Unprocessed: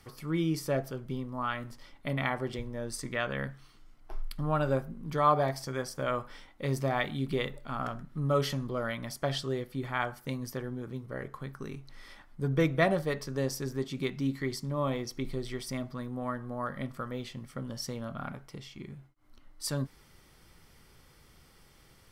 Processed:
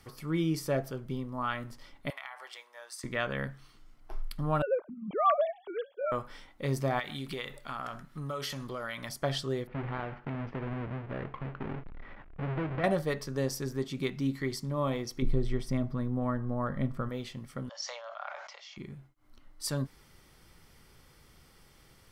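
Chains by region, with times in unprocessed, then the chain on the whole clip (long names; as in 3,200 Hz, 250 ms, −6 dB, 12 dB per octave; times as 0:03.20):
0:02.10–0:03.04: high-pass filter 810 Hz 24 dB per octave + downward compressor 4 to 1, threshold −40 dBFS
0:04.62–0:06.12: three sine waves on the formant tracks + parametric band 1,800 Hz −9 dB 0.68 octaves
0:06.99–0:09.09: tilt shelving filter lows −6 dB, about 640 Hz + downward compressor 5 to 1, threshold −33 dBFS
0:09.67–0:12.84: each half-wave held at its own peak + low-pass filter 2,400 Hz 24 dB per octave + downward compressor 4 to 1, threshold −33 dBFS
0:15.22–0:17.09: spectral tilt −2.5 dB per octave + notch filter 4,600 Hz, Q 28
0:17.69–0:18.77: Chebyshev band-pass filter 580–6,800 Hz, order 5 + level that may fall only so fast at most 41 dB per second
whole clip: no processing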